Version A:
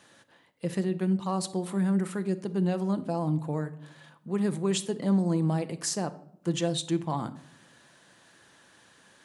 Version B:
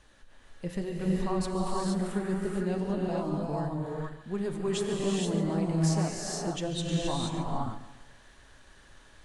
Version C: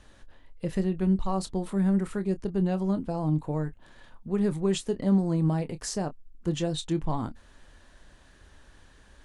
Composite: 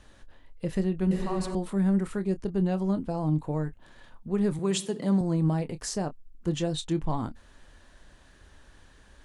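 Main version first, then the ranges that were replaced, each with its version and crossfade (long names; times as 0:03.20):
C
0:01.11–0:01.55: punch in from B
0:04.59–0:05.21: punch in from A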